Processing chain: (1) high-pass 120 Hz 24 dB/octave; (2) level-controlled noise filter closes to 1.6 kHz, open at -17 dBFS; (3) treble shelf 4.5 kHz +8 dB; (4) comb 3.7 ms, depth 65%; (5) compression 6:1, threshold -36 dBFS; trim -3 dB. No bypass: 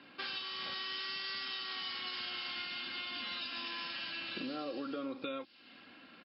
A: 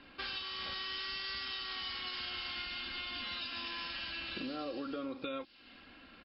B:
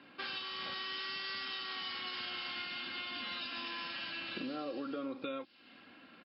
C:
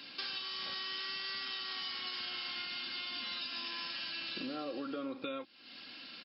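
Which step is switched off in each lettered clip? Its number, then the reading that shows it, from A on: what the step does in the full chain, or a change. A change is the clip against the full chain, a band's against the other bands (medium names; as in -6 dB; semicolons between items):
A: 1, 125 Hz band +4.0 dB; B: 3, 4 kHz band -1.5 dB; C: 2, 4 kHz band +2.0 dB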